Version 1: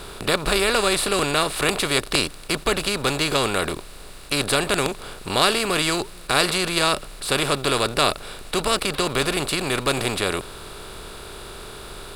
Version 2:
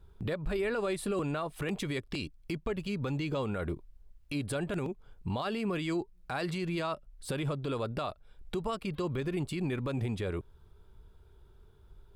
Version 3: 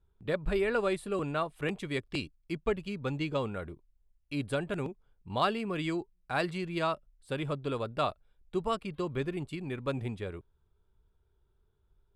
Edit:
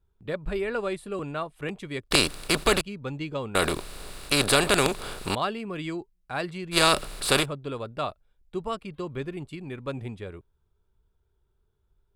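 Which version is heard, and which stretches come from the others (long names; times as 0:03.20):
3
0:02.11–0:02.81: punch in from 1
0:03.55–0:05.35: punch in from 1
0:06.74–0:07.43: punch in from 1, crossfade 0.06 s
not used: 2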